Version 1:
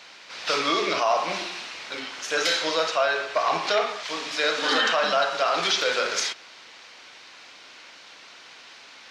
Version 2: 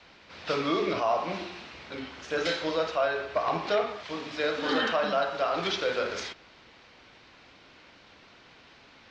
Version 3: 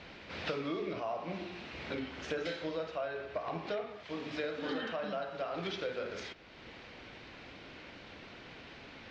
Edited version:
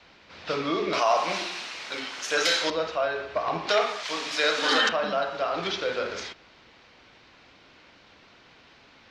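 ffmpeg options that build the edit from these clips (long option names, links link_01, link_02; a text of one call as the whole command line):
ffmpeg -i take0.wav -i take1.wav -filter_complex "[0:a]asplit=2[link_01][link_02];[1:a]asplit=3[link_03][link_04][link_05];[link_03]atrim=end=0.932[link_06];[link_01]atrim=start=0.928:end=2.702[link_07];[link_04]atrim=start=2.698:end=3.692[link_08];[link_02]atrim=start=3.688:end=4.892[link_09];[link_05]atrim=start=4.888[link_10];[link_06][link_07]acrossfade=duration=0.004:curve1=hsin:curve2=hsin[link_11];[link_11][link_08]acrossfade=duration=0.004:curve1=hsin:curve2=hsin[link_12];[link_12][link_09]acrossfade=duration=0.004:curve1=hsin:curve2=hsin[link_13];[link_13][link_10]acrossfade=duration=0.004:curve1=hsin:curve2=hsin" out.wav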